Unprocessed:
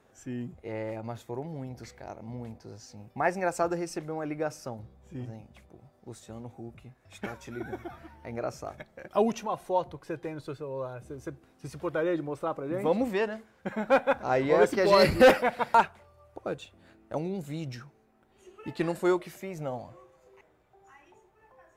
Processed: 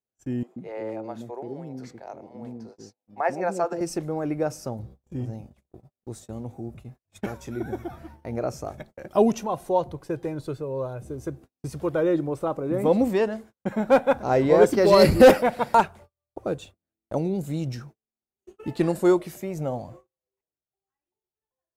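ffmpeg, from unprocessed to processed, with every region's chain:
-filter_complex "[0:a]asettb=1/sr,asplit=3[s0][s1][s2];[s0]atrim=end=0.434[s3];[s1]atrim=start=0.43:end=3.81,asetpts=PTS-STARTPTS,afade=t=in:d=0.004:c=qsin,afade=t=out:st=3.376:d=0.004:c=qsin,highpass=240,aemphasis=mode=reproduction:type=50kf,acrossover=split=420[s4][s5];[s4]adelay=130[s6];[s6][s5]amix=inputs=2:normalize=0,atrim=end_sample=149058[s7];[s2]atrim=start=3.806[s8];[s3][s7]acrossfade=d=0.004:c1=hsin:c2=qsin[s9];[s9][s8]acrossfade=d=0.004:c1=qsin:c2=hsin,equalizer=f=2000:w=0.46:g=-8.5,agate=range=0.01:threshold=0.00251:ratio=16:detection=peak,volume=2.51"

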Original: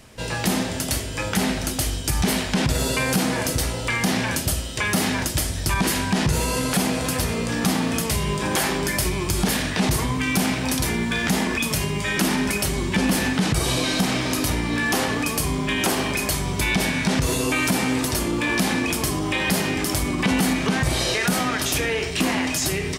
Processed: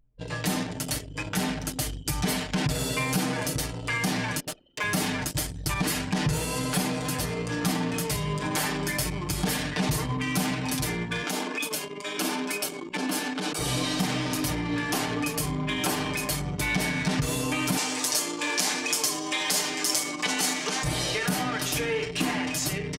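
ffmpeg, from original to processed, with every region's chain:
-filter_complex "[0:a]asettb=1/sr,asplit=3[s0][s1][s2];[s0]atrim=end=4.404[s3];[s1]atrim=start=4.4:end=4.84,asetpts=PTS-STARTPTS,afade=t=in:d=0.004:c=qsin,afade=t=out:st=0.436:d=0.004:c=qsin,highpass=280,adynamicsmooth=sensitivity=7.5:basefreq=1300,acrusher=bits=8:mode=log:mix=0:aa=0.000001[s4];[s2]atrim=start=4.836[s5];[s3][s4]acrossfade=d=0.004:c1=hsin:c2=qsin[s6];[s6][s5]acrossfade=d=0.004:c1=qsin:c2=hsin,asettb=1/sr,asplit=3[s7][s8][s9];[s7]atrim=end=11.234[s10];[s8]atrim=start=11.23:end=13.59,asetpts=PTS-STARTPTS,afade=t=in:d=0.004:c=qsin,afade=t=out:st=2.356:d=0.004:c=qsin,highpass=f=250:w=0.5412,highpass=f=250:w=1.3066,bandreject=f=1900:w=7.5[s11];[s9]atrim=start=13.586[s12];[s10][s11]acrossfade=d=0.004:c1=hsin:c2=qsin[s13];[s13][s12]acrossfade=d=0.004:c1=qsin:c2=hsin,asettb=1/sr,asplit=3[s14][s15][s16];[s14]atrim=end=17.774[s17];[s15]atrim=start=17.77:end=20.84,asetpts=PTS-STARTPTS,afade=t=in:d=0.004:c=qsin,afade=t=out:st=3.066:d=0.004:c=qsin,highpass=380,equalizer=f=6400:t=o:w=1.3:g=10[s18];[s16]atrim=start=20.836[s19];[s17][s18]acrossfade=d=0.004:c1=hsin:c2=qsin[s20];[s20][s19]acrossfade=d=0.004:c1=qsin:c2=hsin,aecho=1:1:6.7:0.77,anlmdn=251,volume=0.447"

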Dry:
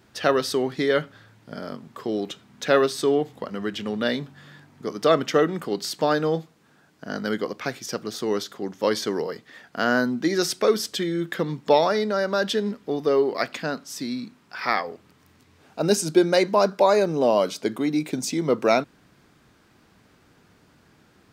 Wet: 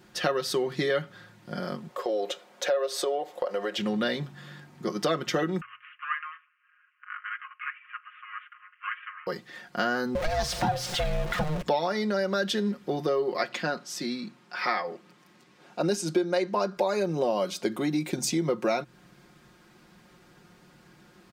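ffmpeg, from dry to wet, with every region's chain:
-filter_complex "[0:a]asettb=1/sr,asplit=3[s0][s1][s2];[s0]atrim=end=1.894[s3];[s1]atrim=start=1.89:end=3.78,asetpts=PTS-STARTPTS,afade=t=in:d=0.004:c=qsin,afade=t=out:st=1.886:d=0.004:c=qsin,highpass=f=540:t=q:w=4.1,acompressor=threshold=0.0447:ratio=2:attack=3.2:release=140:knee=1:detection=peak[s4];[s2]atrim=start=3.776[s5];[s3][s4]acrossfade=d=0.004:c1=hsin:c2=qsin[s6];[s6][s5]acrossfade=d=0.004:c1=qsin:c2=hsin,asettb=1/sr,asplit=3[s7][s8][s9];[s7]atrim=end=5.614[s10];[s8]atrim=start=5.61:end=9.27,asetpts=PTS-STARTPTS,afade=t=in:d=0.004:c=qsin,afade=t=out:st=3.656:d=0.004:c=qsin,aeval=exprs='if(lt(val(0),0),0.251*val(0),val(0))':c=same,asuperpass=centerf=1800:order=20:qfactor=1[s11];[s9]atrim=start=9.266[s12];[s10][s11]acrossfade=d=0.004:c1=hsin:c2=qsin[s13];[s13][s12]acrossfade=d=0.004:c1=qsin:c2=hsin,asettb=1/sr,asplit=3[s14][s15][s16];[s14]atrim=end=10.154[s17];[s15]atrim=start=10.15:end=11.62,asetpts=PTS-STARTPTS,afade=t=in:d=0.004:c=qsin,afade=t=out:st=1.466:d=0.004:c=qsin,aeval=exprs='val(0)+0.5*0.0596*sgn(val(0))':c=same,highshelf=f=6600:g=-12,aeval=exprs='val(0)*sin(2*PI*310*n/s)':c=same[s18];[s16]atrim=start=11.616[s19];[s17][s18]acrossfade=d=0.004:c1=hsin:c2=qsin[s20];[s20][s19]acrossfade=d=0.004:c1=qsin:c2=hsin,asettb=1/sr,asplit=3[s21][s22][s23];[s21]atrim=end=13.364[s24];[s22]atrim=start=13.36:end=16.77,asetpts=PTS-STARTPTS,afade=t=in:d=0.004:c=qsin,afade=t=out:st=3.406:d=0.004:c=qsin,highpass=180,highshelf=f=11000:g=-11.5[s25];[s23]atrim=start=16.766[s26];[s24][s25]acrossfade=d=0.004:c1=hsin:c2=qsin[s27];[s27][s26]acrossfade=d=0.004:c1=qsin:c2=hsin,aecho=1:1:5.6:0.67,bandreject=f=63.56:t=h:w=4,bandreject=f=127.12:t=h:w=4,acompressor=threshold=0.0631:ratio=4"

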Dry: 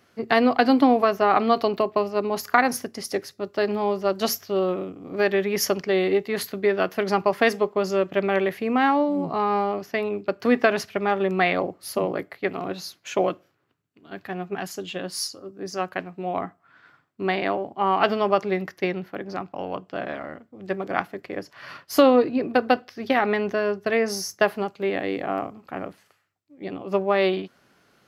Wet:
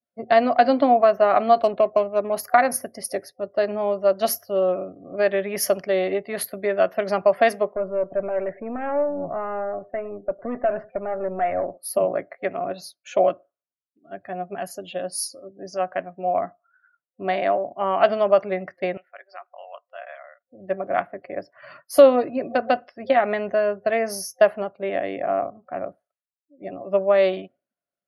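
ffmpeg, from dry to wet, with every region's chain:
-filter_complex "[0:a]asettb=1/sr,asplit=3[s0][s1][s2];[s0]atrim=end=1.594[s3];[s1]atrim=start=1.59:end=2.33,asetpts=PTS-STARTPTS,afade=t=in:d=0.004:c=qsin,afade=t=out:st=0.736:d=0.004:c=qsin,bandreject=f=2000:w=9.7,adynamicsmooth=sensitivity=6.5:basefreq=760[s4];[s2]atrim=start=2.326[s5];[s3][s4]acrossfade=d=0.004:c1=hsin:c2=qsin[s6];[s6][s5]acrossfade=d=0.004:c1=qsin:c2=hsin,asettb=1/sr,asplit=3[s7][s8][s9];[s7]atrim=end=7.754[s10];[s8]atrim=start=7.75:end=11.78,asetpts=PTS-STARTPTS,afade=t=in:d=0.004:c=qsin,afade=t=out:st=4.026:d=0.004:c=qsin,aeval=exprs='(tanh(10*val(0)+0.45)-tanh(0.45))/10':c=same,lowpass=1700,aecho=1:1:105:0.0841,atrim=end_sample=177723[s11];[s9]atrim=start=11.776[s12];[s10][s11]acrossfade=d=0.004:c1=hsin:c2=qsin[s13];[s13][s12]acrossfade=d=0.004:c1=qsin:c2=hsin,asettb=1/sr,asplit=3[s14][s15][s16];[s14]atrim=end=18.974[s17];[s15]atrim=start=18.97:end=20.47,asetpts=PTS-STARTPTS,afade=t=in:d=0.004:c=qsin,afade=t=out:st=1.496:d=0.004:c=qsin,highpass=1300,equalizer=f=6900:w=1.3:g=-3[s18];[s16]atrim=start=20.466[s19];[s17][s18]acrossfade=d=0.004:c1=hsin:c2=qsin[s20];[s20][s19]acrossfade=d=0.004:c1=qsin:c2=hsin,adynamicequalizer=threshold=0.0224:dfrequency=1600:dqfactor=0.96:tfrequency=1600:tqfactor=0.96:attack=5:release=100:ratio=0.375:range=1.5:mode=boostabove:tftype=bell,afftdn=nr=32:nf=-44,superequalizer=8b=3.55:16b=3.55,volume=0.596"

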